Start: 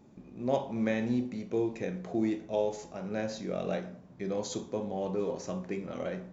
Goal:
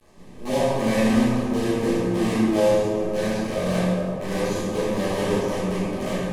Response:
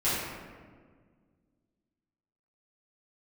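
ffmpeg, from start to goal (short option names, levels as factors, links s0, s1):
-filter_complex "[0:a]acrusher=bits=6:dc=4:mix=0:aa=0.000001,asuperstop=centerf=1400:order=12:qfactor=6.8[s0];[1:a]atrim=start_sample=2205,asetrate=24696,aresample=44100[s1];[s0][s1]afir=irnorm=-1:irlink=0,volume=0.447"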